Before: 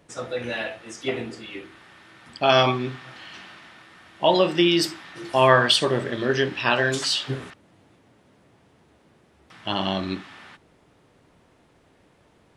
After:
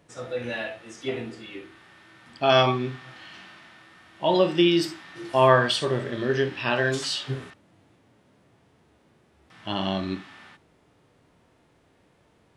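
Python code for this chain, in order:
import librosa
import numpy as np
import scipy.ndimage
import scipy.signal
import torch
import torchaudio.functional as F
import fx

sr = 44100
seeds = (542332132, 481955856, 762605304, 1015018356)

y = fx.hpss(x, sr, part='percussive', gain_db=-9)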